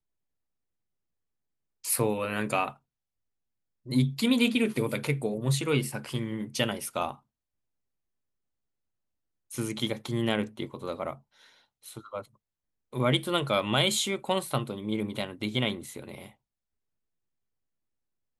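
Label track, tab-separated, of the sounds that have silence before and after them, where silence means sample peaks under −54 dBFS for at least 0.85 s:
1.840000	2.770000	sound
3.860000	7.200000	sound
9.500000	16.340000	sound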